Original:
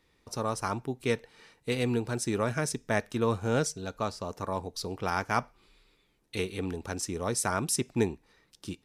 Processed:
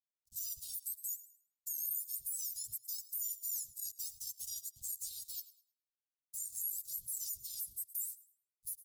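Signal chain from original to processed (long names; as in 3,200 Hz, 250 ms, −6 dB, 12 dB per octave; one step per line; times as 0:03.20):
frequency axis turned over on the octave scale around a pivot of 1,800 Hz
spectral tilt +4 dB per octave
downsampling to 32,000 Hz
parametric band 5,100 Hz −9 dB 1.9 octaves
dead-zone distortion −42.5 dBFS
downward compressor 10 to 1, threshold −34 dBFS, peak gain reduction 14.5 dB
on a send: feedback echo with a high-pass in the loop 106 ms, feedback 32%, level −22 dB
on the sum: brickwall limiter −33 dBFS, peak gain reduction 11 dB
inverse Chebyshev band-stop filter 300–2,200 Hz, stop band 50 dB
one half of a high-frequency compander decoder only
level +4.5 dB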